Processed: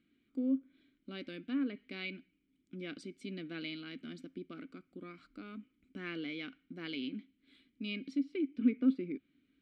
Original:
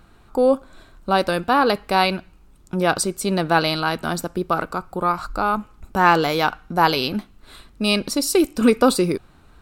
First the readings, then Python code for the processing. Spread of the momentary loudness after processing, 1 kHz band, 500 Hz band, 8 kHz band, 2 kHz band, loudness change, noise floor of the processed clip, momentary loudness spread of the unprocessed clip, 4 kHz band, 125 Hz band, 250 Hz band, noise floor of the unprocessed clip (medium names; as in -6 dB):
18 LU, -39.0 dB, -26.0 dB, under -35 dB, -22.0 dB, -18.5 dB, -77 dBFS, 10 LU, -22.0 dB, -22.5 dB, -12.5 dB, -51 dBFS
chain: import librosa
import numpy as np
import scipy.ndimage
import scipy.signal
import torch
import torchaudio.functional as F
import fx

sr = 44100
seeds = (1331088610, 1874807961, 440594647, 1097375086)

y = fx.vowel_filter(x, sr, vowel='i')
y = fx.env_lowpass_down(y, sr, base_hz=2000.0, full_db=-26.0)
y = y * librosa.db_to_amplitude(-6.5)